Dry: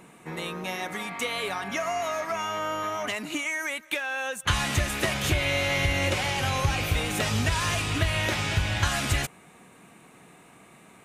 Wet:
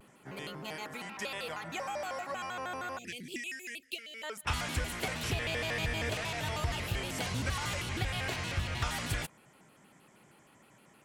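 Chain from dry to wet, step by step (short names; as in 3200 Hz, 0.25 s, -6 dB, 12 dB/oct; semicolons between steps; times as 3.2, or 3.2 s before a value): 2.98–4.23 elliptic band-stop 470–2200 Hz, stop band 40 dB; shaped vibrato square 6.4 Hz, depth 250 cents; gain -8.5 dB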